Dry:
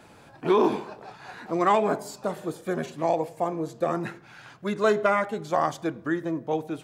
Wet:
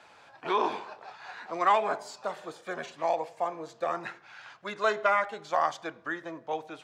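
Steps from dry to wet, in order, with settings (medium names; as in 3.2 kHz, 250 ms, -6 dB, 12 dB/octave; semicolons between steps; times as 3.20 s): three-band isolator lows -17 dB, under 580 Hz, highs -18 dB, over 6.9 kHz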